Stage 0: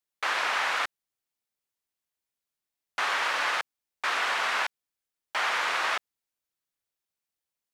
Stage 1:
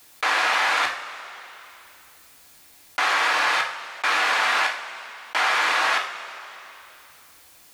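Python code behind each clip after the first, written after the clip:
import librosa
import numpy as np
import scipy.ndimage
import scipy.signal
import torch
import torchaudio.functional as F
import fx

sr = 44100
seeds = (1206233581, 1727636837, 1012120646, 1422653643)

y = fx.rev_double_slope(x, sr, seeds[0], early_s=0.26, late_s=1.8, knee_db=-27, drr_db=1.5)
y = fx.env_flatten(y, sr, amount_pct=50)
y = y * librosa.db_to_amplitude(3.5)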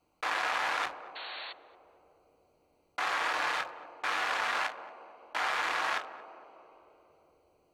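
y = fx.wiener(x, sr, points=25)
y = fx.spec_paint(y, sr, seeds[1], shape='noise', start_s=1.15, length_s=0.38, low_hz=540.0, high_hz=4500.0, level_db=-34.0)
y = fx.echo_banded(y, sr, ms=226, feedback_pct=79, hz=410.0, wet_db=-11)
y = y * librosa.db_to_amplitude(-8.0)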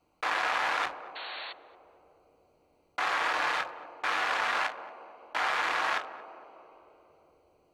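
y = fx.high_shelf(x, sr, hz=5800.0, db=-5.0)
y = y * librosa.db_to_amplitude(2.5)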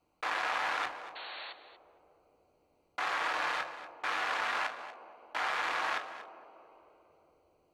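y = x + 10.0 ** (-14.5 / 20.0) * np.pad(x, (int(238 * sr / 1000.0), 0))[:len(x)]
y = y * librosa.db_to_amplitude(-4.0)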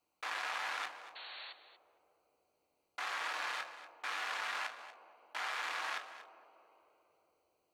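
y = fx.tilt_eq(x, sr, slope=2.5)
y = y * librosa.db_to_amplitude(-7.5)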